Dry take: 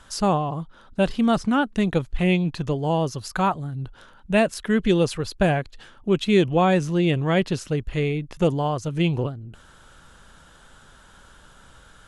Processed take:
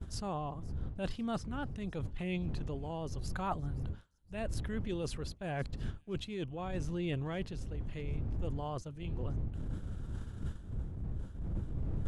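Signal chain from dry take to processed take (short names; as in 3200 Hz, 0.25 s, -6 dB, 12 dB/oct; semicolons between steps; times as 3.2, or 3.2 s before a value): wind noise 92 Hz -18 dBFS; expander -24 dBFS; transient shaper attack -7 dB, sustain 0 dB; reverse; compressor 12:1, threshold -35 dBFS, peak gain reduction 30 dB; reverse; tremolo 0.85 Hz, depth 37%; on a send: thin delay 0.519 s, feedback 33%, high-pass 5100 Hz, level -19 dB; on the sum: gain +2.5 dB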